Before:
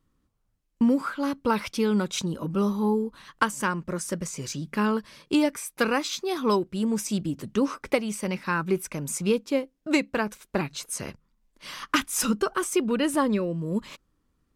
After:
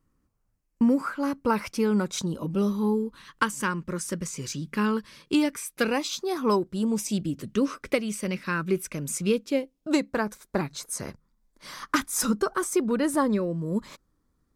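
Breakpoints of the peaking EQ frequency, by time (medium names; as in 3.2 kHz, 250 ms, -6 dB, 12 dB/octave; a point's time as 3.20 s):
peaking EQ -10.5 dB 0.49 oct
2.06 s 3.5 kHz
2.80 s 700 Hz
5.67 s 700 Hz
6.45 s 4 kHz
7.33 s 860 Hz
9.44 s 860 Hz
10.05 s 2.8 kHz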